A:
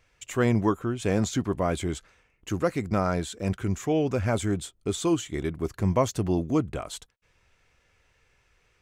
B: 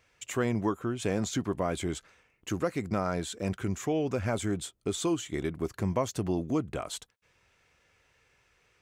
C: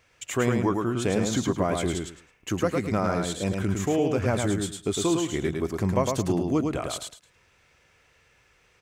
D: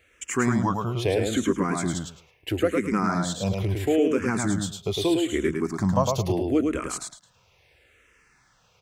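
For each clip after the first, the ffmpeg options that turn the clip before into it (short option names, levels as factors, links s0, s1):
-af "highpass=f=110:p=1,acompressor=threshold=0.0398:ratio=2"
-af "aecho=1:1:107|214|321:0.631|0.133|0.0278,volume=1.58"
-filter_complex "[0:a]asplit=2[s0][s1];[s1]afreqshift=-0.76[s2];[s0][s2]amix=inputs=2:normalize=1,volume=1.58"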